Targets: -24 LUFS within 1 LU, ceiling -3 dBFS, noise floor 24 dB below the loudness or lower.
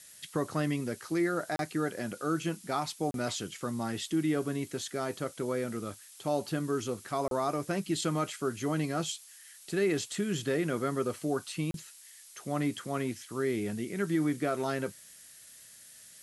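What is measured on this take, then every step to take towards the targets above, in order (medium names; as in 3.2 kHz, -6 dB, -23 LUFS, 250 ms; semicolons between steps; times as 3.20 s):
dropouts 4; longest dropout 32 ms; noise floor -53 dBFS; noise floor target -57 dBFS; loudness -33.0 LUFS; peak level -17.5 dBFS; loudness target -24.0 LUFS
-> interpolate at 1.56/3.11/7.28/11.71 s, 32 ms; noise reduction 6 dB, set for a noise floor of -53 dBFS; trim +9 dB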